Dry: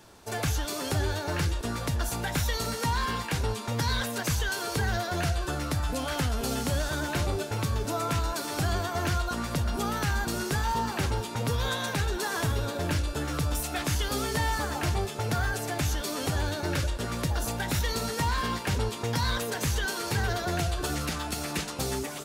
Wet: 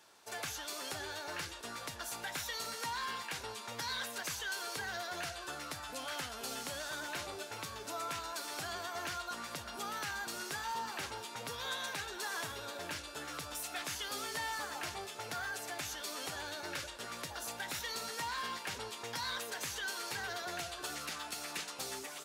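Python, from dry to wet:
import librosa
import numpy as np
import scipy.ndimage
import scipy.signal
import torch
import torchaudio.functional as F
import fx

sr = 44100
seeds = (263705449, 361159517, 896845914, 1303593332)

p1 = fx.highpass(x, sr, hz=1100.0, slope=6)
p2 = fx.high_shelf(p1, sr, hz=7800.0, db=-3.5)
p3 = 10.0 ** (-36.0 / 20.0) * np.tanh(p2 / 10.0 ** (-36.0 / 20.0))
p4 = p2 + F.gain(torch.from_numpy(p3), -12.0).numpy()
y = F.gain(torch.from_numpy(p4), -6.5).numpy()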